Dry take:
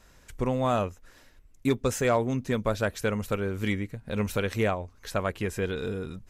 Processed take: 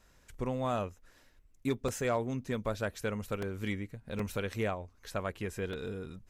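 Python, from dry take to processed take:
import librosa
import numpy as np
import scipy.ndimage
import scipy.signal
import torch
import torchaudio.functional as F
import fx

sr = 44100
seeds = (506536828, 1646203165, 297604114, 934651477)

y = fx.buffer_crackle(x, sr, first_s=0.34, period_s=0.77, block=128, kind='repeat')
y = F.gain(torch.from_numpy(y), -7.0).numpy()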